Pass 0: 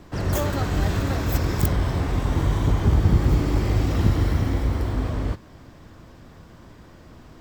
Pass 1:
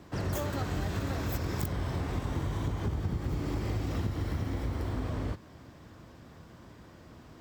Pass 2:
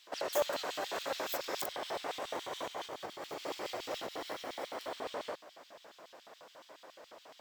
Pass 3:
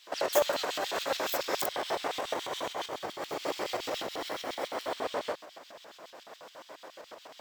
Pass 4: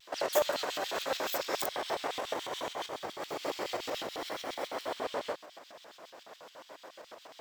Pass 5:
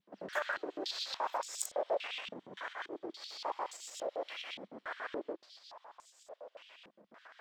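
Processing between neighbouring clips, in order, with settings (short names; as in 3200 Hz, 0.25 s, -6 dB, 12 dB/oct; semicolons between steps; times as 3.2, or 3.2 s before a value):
HPF 60 Hz; compressor, threshold -24 dBFS, peak gain reduction 10.5 dB; gain -4.5 dB
low shelf 190 Hz -5.5 dB; LFO high-pass square 7.1 Hz 580–3300 Hz; gain +1 dB
tremolo saw up 7.7 Hz, depth 45%; gain +8 dB
vibrato 0.73 Hz 28 cents; gain -2 dB
stepped band-pass 3.5 Hz 200–7500 Hz; gain +7 dB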